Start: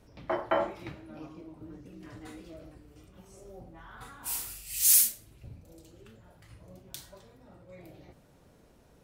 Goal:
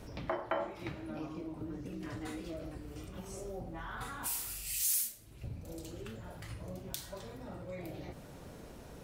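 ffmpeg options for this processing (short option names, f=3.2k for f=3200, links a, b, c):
-af "acompressor=threshold=-51dB:ratio=2.5,volume=10dB"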